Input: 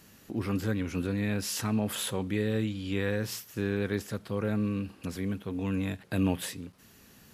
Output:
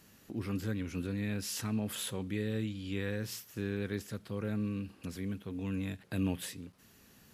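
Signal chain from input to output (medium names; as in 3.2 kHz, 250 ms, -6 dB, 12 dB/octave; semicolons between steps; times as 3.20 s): dynamic bell 810 Hz, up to -5 dB, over -46 dBFS, Q 0.77; trim -4.5 dB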